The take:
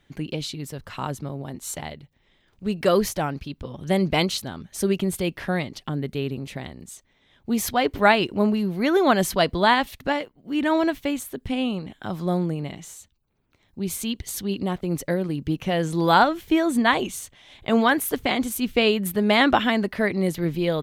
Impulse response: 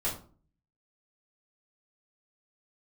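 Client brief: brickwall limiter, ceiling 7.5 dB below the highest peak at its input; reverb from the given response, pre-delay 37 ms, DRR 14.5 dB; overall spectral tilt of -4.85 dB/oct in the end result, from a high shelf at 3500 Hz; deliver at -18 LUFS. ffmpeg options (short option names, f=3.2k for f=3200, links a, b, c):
-filter_complex "[0:a]highshelf=f=3.5k:g=-6.5,alimiter=limit=-11dB:level=0:latency=1,asplit=2[a][b];[1:a]atrim=start_sample=2205,adelay=37[c];[b][c]afir=irnorm=-1:irlink=0,volume=-20.5dB[d];[a][d]amix=inputs=2:normalize=0,volume=7dB"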